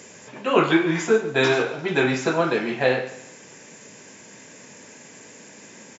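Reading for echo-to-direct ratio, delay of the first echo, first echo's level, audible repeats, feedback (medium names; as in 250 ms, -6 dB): -15.0 dB, 139 ms, -15.5 dB, 3, 34%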